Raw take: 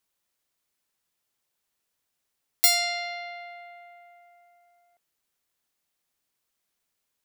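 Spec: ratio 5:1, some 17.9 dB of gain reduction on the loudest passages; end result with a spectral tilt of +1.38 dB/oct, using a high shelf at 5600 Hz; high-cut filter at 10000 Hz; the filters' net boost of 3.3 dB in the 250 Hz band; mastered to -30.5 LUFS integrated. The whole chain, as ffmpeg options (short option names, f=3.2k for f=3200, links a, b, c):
-af "lowpass=10k,equalizer=f=250:t=o:g=4.5,highshelf=f=5.6k:g=3.5,acompressor=threshold=-37dB:ratio=5,volume=10dB"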